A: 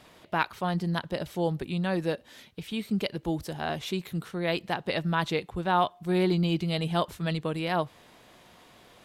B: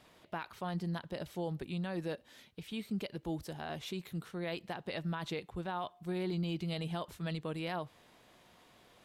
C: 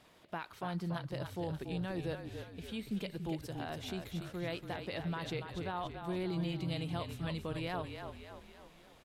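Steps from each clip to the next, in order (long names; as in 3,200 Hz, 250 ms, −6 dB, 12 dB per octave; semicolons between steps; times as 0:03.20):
brickwall limiter −21 dBFS, peak gain reduction 11.5 dB; level −7.5 dB
echo with shifted repeats 285 ms, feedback 51%, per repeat −38 Hz, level −7 dB; level −1 dB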